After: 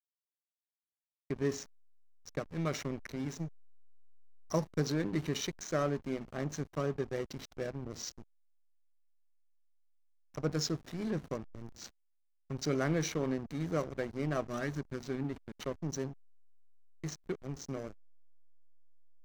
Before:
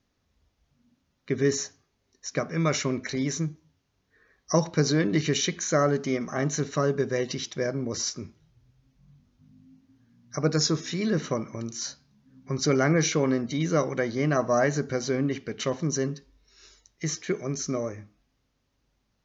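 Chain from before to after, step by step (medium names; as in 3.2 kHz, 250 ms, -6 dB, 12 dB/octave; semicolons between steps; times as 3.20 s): time-frequency box 14.48–15.59 s, 420–1100 Hz -9 dB; hysteresis with a dead band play -25.5 dBFS; trim -8.5 dB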